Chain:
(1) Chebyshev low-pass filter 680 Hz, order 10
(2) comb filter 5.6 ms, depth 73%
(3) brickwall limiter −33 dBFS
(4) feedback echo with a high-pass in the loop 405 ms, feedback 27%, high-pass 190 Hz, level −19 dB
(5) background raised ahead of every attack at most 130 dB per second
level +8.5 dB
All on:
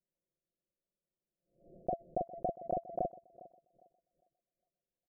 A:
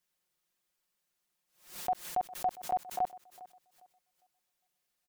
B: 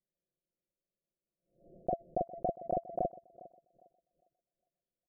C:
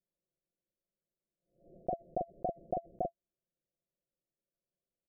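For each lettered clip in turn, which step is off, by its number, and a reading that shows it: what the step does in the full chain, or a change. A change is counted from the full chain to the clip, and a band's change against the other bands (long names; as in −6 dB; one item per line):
1, 1 kHz band +15.5 dB
3, change in crest factor +1.5 dB
4, change in momentary loudness spread −17 LU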